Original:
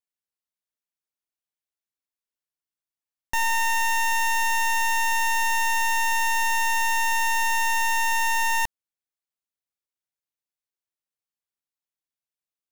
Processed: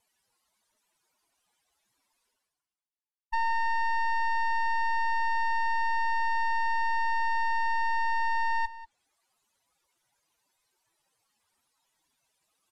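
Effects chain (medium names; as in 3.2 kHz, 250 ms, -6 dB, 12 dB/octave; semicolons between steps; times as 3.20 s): spectral contrast enhancement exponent 2.8; low-pass 12 kHz 24 dB/octave; peaking EQ 920 Hz +8.5 dB 0.57 oct; low-pass that closes with the level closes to 2.2 kHz, closed at -26 dBFS; reverse; upward compressor, threshold -43 dBFS; reverse; waveshaping leveller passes 2; on a send: delay 190 ms -16.5 dB; on the sum: trim -6.5 dB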